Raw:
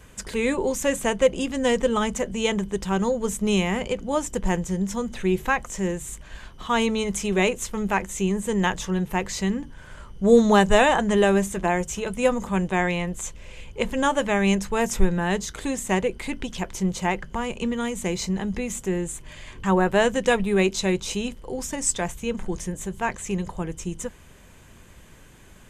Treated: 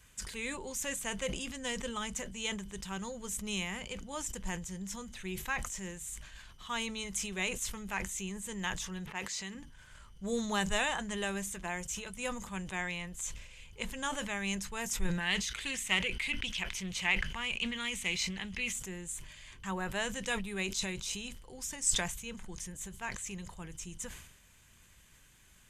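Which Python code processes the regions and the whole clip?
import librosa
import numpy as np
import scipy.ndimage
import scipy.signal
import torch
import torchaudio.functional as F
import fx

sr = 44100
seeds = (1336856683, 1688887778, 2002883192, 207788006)

y = fx.chain(x, sr, fx.highpass(hz=320.0, slope=6),
    fx.env_lowpass(base_hz=1700.0, full_db=-24.0), at=(9.06, 9.55))
y = fx.chain(y, sr, fx.peak_eq(hz=2500.0, db=12.5, octaves=1.2),
    fx.notch(hz=7200.0, q=17.0),
    fx.doppler_dist(depth_ms=0.18), at=(15.2, 18.73))
y = fx.tone_stack(y, sr, knobs='5-5-5')
y = fx.sustainer(y, sr, db_per_s=63.0)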